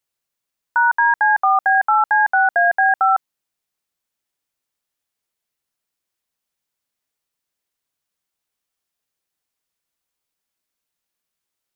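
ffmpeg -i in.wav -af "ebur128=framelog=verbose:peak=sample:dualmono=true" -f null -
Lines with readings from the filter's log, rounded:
Integrated loudness:
  I:         -12.8 LUFS
  Threshold: -22.8 LUFS
Loudness range:
  LRA:         9.7 LU
  Threshold: -35.1 LUFS
  LRA low:   -22.7 LUFS
  LRA high:  -13.1 LUFS
Sample peak:
  Peak:       -8.2 dBFS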